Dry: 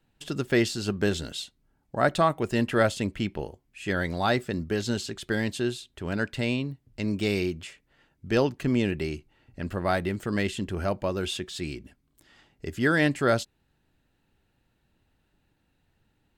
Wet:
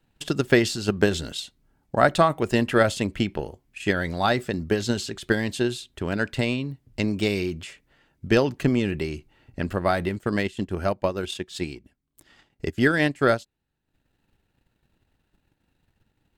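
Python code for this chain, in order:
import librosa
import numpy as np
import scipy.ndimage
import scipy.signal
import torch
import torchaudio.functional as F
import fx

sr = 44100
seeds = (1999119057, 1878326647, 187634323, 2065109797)

y = fx.transient(x, sr, attack_db=8, sustain_db=fx.steps((0.0, 4.0), (10.17, -10.0)))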